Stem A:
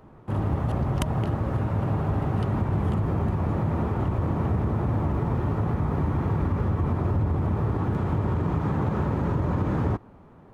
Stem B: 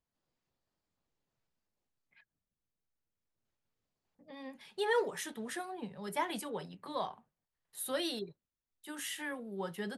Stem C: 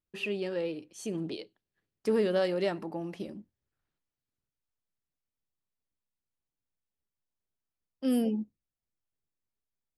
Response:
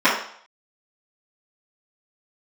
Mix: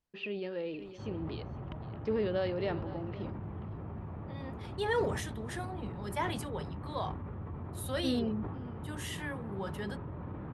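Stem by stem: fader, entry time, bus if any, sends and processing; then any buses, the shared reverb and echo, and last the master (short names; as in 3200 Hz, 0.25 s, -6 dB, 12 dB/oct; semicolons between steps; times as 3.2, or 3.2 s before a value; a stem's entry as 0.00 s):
-17.5 dB, 0.70 s, no send, no echo send, LPF 3400 Hz 24 dB/oct
-0.5 dB, 0.00 s, no send, no echo send, dry
-5.0 dB, 0.00 s, no send, echo send -17.5 dB, LPF 4300 Hz 24 dB/oct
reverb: off
echo: echo 0.509 s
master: high shelf 11000 Hz -9.5 dB; sustainer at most 45 dB/s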